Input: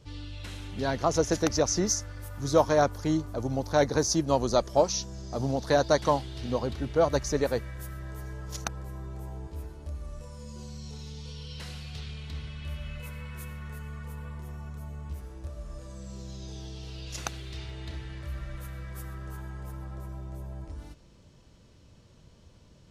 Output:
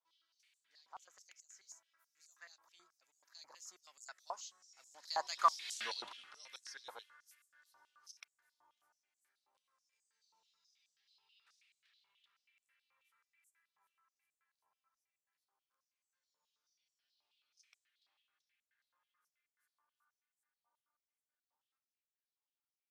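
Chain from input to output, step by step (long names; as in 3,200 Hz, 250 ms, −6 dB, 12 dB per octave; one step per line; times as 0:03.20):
source passing by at 0:05.76, 36 m/s, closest 2.2 metres
high-pass on a step sequencer 9.3 Hz 940–7,500 Hz
level +6.5 dB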